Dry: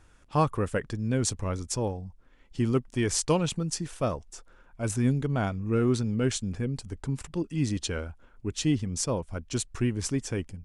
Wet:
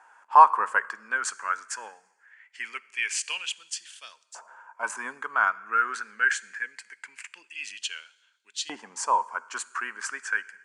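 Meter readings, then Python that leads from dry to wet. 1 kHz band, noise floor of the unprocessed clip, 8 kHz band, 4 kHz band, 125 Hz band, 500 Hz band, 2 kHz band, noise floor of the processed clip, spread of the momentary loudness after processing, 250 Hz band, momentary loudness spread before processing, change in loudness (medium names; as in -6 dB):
+12.5 dB, -59 dBFS, -1.5 dB, +1.0 dB, under -40 dB, -11.0 dB, +14.0 dB, -67 dBFS, 20 LU, -24.0 dB, 9 LU, +2.5 dB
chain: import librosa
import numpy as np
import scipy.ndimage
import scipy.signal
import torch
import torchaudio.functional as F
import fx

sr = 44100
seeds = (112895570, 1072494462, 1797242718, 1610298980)

y = fx.cabinet(x, sr, low_hz=180.0, low_slope=24, high_hz=9000.0, hz=(210.0, 430.0, 950.0, 1600.0, 3700.0, 5500.0), db=(6, 3, 6, 10, -10, -5))
y = fx.rev_fdn(y, sr, rt60_s=1.2, lf_ratio=0.95, hf_ratio=0.85, size_ms=44.0, drr_db=17.0)
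y = fx.filter_lfo_highpass(y, sr, shape='saw_up', hz=0.23, low_hz=810.0, high_hz=3900.0, q=4.6)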